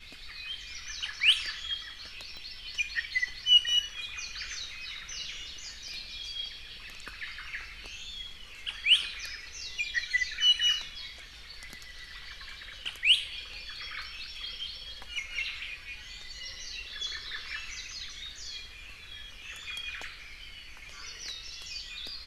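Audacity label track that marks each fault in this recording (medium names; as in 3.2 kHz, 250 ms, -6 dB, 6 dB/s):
2.370000	2.370000	pop -31 dBFS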